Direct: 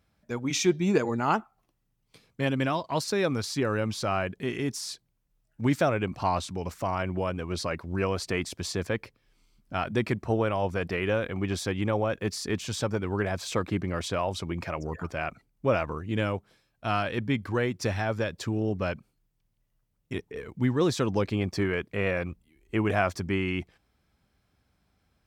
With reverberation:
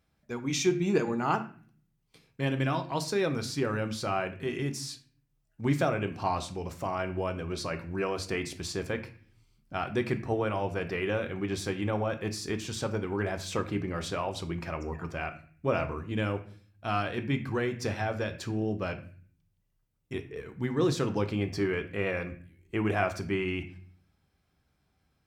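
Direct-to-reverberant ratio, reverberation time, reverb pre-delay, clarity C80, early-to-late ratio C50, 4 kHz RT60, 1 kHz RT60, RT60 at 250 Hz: 6.0 dB, 0.45 s, 3 ms, 16.5 dB, 13.0 dB, 0.40 s, 0.45 s, 0.75 s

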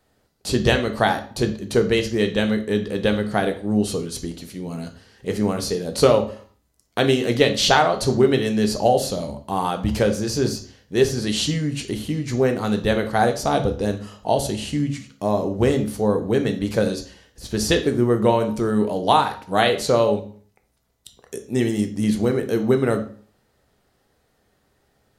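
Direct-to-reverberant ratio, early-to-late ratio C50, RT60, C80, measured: 6.0 dB, 12.0 dB, 0.50 s, 16.5 dB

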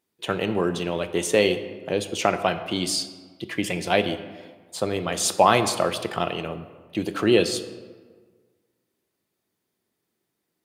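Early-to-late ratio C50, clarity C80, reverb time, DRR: 11.5 dB, 13.0 dB, 1.5 s, 9.0 dB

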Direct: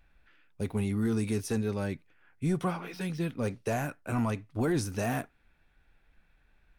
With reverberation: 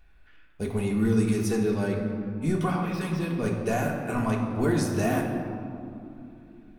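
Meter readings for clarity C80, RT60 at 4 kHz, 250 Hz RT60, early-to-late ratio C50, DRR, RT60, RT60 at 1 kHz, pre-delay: 5.0 dB, 1.2 s, 4.3 s, 3.5 dB, −0.5 dB, 2.9 s, 2.8 s, 3 ms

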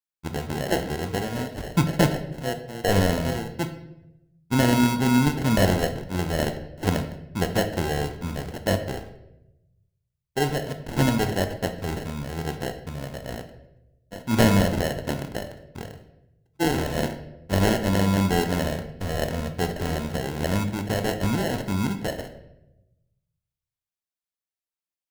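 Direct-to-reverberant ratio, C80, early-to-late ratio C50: 7.0 dB, 12.5 dB, 10.0 dB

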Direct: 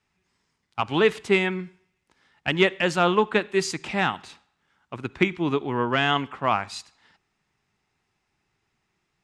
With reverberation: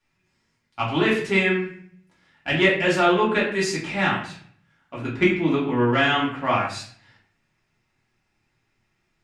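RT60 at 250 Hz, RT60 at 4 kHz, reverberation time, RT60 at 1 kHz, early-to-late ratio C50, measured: 0.65 s, 0.40 s, 0.50 s, 0.45 s, 5.0 dB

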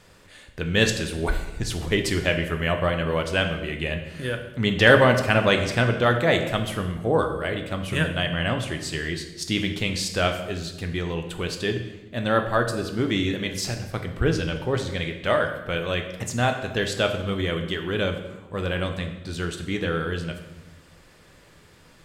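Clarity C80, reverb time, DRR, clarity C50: 10.5 dB, 1.1 s, 5.0 dB, 8.5 dB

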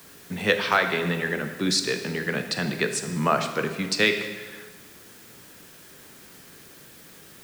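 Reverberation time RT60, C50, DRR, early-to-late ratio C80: 1.6 s, 8.5 dB, 6.5 dB, 9.5 dB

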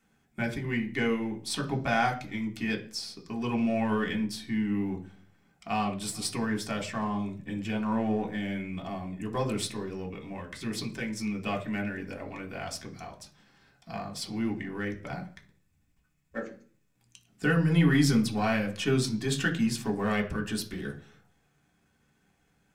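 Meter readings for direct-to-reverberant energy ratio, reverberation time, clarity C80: 0.0 dB, 0.45 s, 18.5 dB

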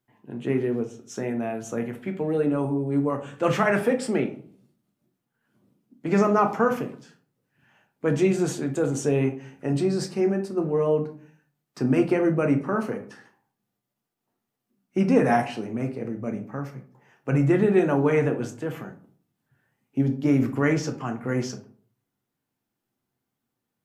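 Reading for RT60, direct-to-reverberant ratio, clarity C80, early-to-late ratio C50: 0.50 s, 4.0 dB, 17.0 dB, 11.5 dB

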